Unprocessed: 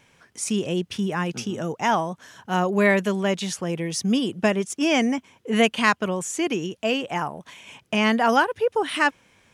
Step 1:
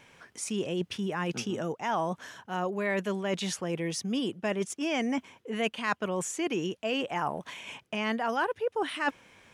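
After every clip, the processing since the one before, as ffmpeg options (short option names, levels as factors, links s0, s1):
-af "areverse,acompressor=threshold=0.0355:ratio=6,areverse,bass=f=250:g=-4,treble=f=4000:g=-4,volume=1.33"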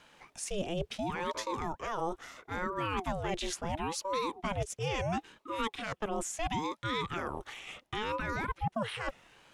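-filter_complex "[0:a]acrossover=split=140|440|4500[s0][s1][s2][s3];[s2]alimiter=level_in=1.19:limit=0.0631:level=0:latency=1:release=48,volume=0.841[s4];[s0][s1][s4][s3]amix=inputs=4:normalize=0,aeval=exprs='val(0)*sin(2*PI*470*n/s+470*0.65/0.73*sin(2*PI*0.73*n/s))':c=same"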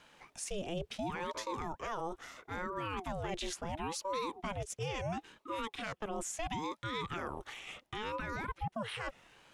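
-af "alimiter=level_in=1.33:limit=0.0631:level=0:latency=1:release=87,volume=0.75,volume=0.841"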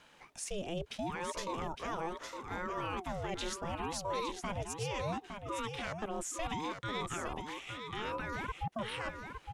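-af "aecho=1:1:861:0.473"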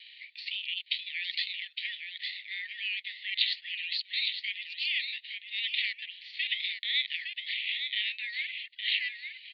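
-af "crystalizer=i=4.5:c=0,asuperpass=centerf=2900:order=20:qfactor=1.1,volume=2.51"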